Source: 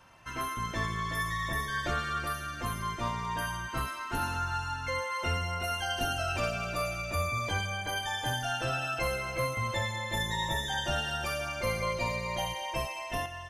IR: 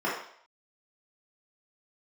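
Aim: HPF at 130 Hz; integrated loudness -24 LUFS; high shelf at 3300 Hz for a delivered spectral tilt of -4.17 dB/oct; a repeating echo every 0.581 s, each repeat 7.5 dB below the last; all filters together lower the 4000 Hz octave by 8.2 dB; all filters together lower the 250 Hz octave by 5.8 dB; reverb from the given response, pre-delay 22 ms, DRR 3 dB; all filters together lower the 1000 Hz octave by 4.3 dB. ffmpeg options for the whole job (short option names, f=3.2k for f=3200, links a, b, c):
-filter_complex "[0:a]highpass=130,equalizer=f=250:t=o:g=-7.5,equalizer=f=1k:t=o:g=-4,highshelf=f=3.3k:g=-6,equalizer=f=4k:t=o:g=-7,aecho=1:1:581|1162|1743|2324|2905:0.422|0.177|0.0744|0.0312|0.0131,asplit=2[a][b];[1:a]atrim=start_sample=2205,adelay=22[c];[b][c]afir=irnorm=-1:irlink=0,volume=-15dB[d];[a][d]amix=inputs=2:normalize=0,volume=10dB"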